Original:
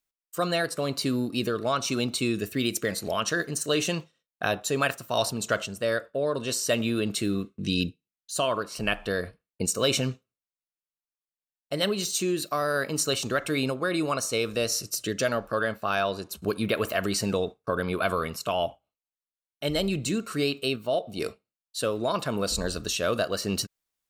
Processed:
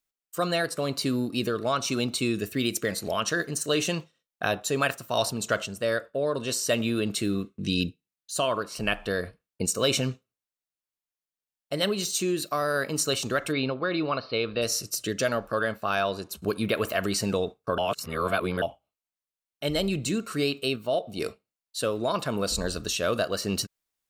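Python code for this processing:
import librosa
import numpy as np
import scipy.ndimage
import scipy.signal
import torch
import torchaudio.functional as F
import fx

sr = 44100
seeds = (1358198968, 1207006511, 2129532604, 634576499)

y = fx.cheby1_lowpass(x, sr, hz=4800.0, order=8, at=(13.51, 14.61), fade=0.02)
y = fx.edit(y, sr, fx.reverse_span(start_s=17.78, length_s=0.84), tone=tone)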